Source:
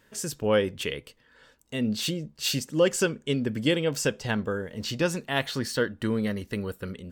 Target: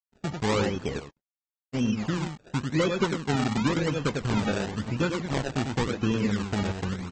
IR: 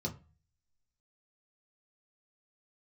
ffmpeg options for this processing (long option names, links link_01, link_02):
-filter_complex "[0:a]aresample=16000,acrusher=bits=6:mix=0:aa=0.000001,aresample=44100,aecho=1:1:0.8:0.53,asplit=2[link_01][link_02];[link_02]aecho=0:1:96:0.501[link_03];[link_01][link_03]amix=inputs=2:normalize=0,acompressor=threshold=-24dB:ratio=4,lowpass=frequency=2100:width=0.5412,lowpass=frequency=2100:width=1.3066,acrusher=samples=29:mix=1:aa=0.000001:lfo=1:lforange=29:lforate=0.94,agate=range=-33dB:threshold=-34dB:ratio=3:detection=peak,volume=2dB" -ar 48000 -c:a aac -b:a 24k